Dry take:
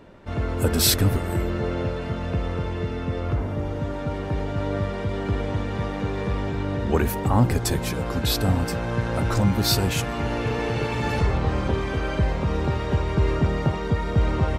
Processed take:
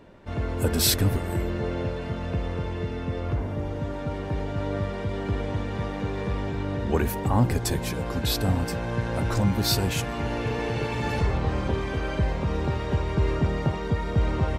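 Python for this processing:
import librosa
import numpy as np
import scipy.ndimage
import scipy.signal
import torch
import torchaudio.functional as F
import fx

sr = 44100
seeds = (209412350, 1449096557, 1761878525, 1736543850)

y = fx.notch(x, sr, hz=1300.0, q=15.0)
y = y * 10.0 ** (-2.5 / 20.0)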